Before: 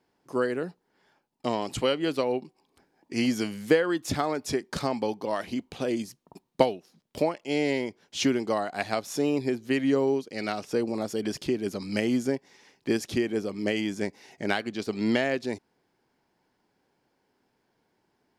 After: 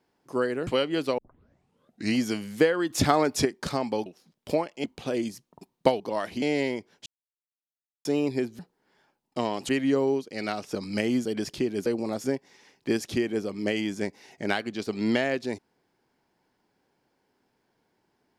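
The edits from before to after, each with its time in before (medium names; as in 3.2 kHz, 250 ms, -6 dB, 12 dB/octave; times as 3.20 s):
0.67–1.77 s: move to 9.69 s
2.28 s: tape start 0.98 s
4.00–4.55 s: gain +6 dB
5.16–5.58 s: swap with 6.74–7.52 s
8.16–9.15 s: mute
10.75–11.13 s: swap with 11.74–12.24 s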